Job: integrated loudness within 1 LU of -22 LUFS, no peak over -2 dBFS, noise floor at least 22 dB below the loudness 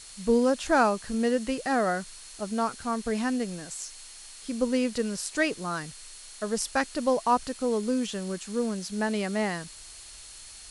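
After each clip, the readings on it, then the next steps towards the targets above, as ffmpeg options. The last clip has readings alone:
steady tone 4.3 kHz; tone level -53 dBFS; noise floor -46 dBFS; noise floor target -50 dBFS; loudness -28.0 LUFS; peak level -11.5 dBFS; loudness target -22.0 LUFS
-> -af "bandreject=f=4300:w=30"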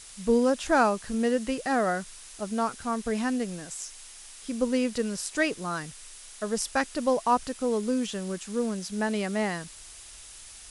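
steady tone not found; noise floor -47 dBFS; noise floor target -51 dBFS
-> -af "afftdn=nr=6:nf=-47"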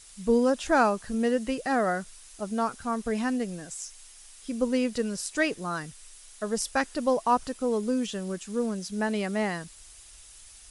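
noise floor -51 dBFS; loudness -28.5 LUFS; peak level -11.5 dBFS; loudness target -22.0 LUFS
-> -af "volume=2.11"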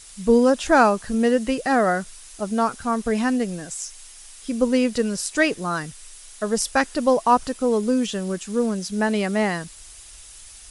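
loudness -22.0 LUFS; peak level -5.0 dBFS; noise floor -44 dBFS

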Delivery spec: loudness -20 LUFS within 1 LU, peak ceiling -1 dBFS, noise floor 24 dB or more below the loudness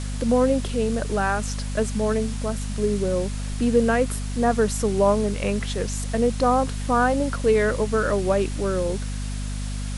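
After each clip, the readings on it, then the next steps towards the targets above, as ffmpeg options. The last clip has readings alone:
hum 50 Hz; highest harmonic 250 Hz; hum level -26 dBFS; noise floor -29 dBFS; noise floor target -48 dBFS; loudness -23.5 LUFS; peak level -7.0 dBFS; loudness target -20.0 LUFS
-> -af "bandreject=f=50:t=h:w=6,bandreject=f=100:t=h:w=6,bandreject=f=150:t=h:w=6,bandreject=f=200:t=h:w=6,bandreject=f=250:t=h:w=6"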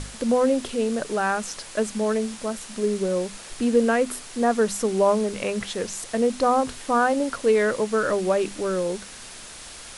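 hum not found; noise floor -41 dBFS; noise floor target -48 dBFS
-> -af "afftdn=nr=7:nf=-41"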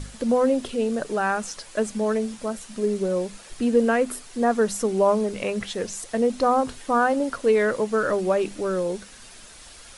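noise floor -46 dBFS; noise floor target -48 dBFS
-> -af "afftdn=nr=6:nf=-46"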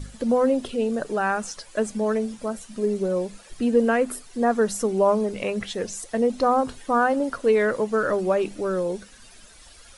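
noise floor -49 dBFS; loudness -24.0 LUFS; peak level -8.5 dBFS; loudness target -20.0 LUFS
-> -af "volume=1.58"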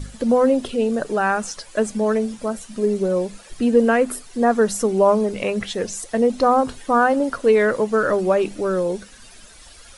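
loudness -20.0 LUFS; peak level -4.5 dBFS; noise floor -45 dBFS

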